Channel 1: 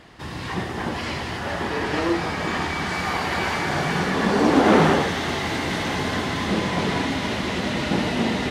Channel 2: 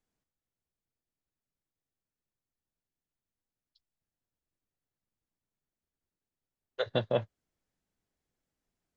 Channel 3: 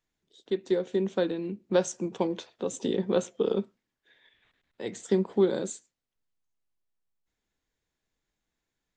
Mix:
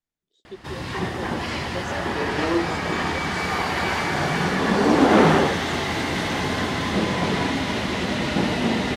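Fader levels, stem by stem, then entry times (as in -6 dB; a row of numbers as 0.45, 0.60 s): +0.5, -10.5, -10.0 dB; 0.45, 0.00, 0.00 s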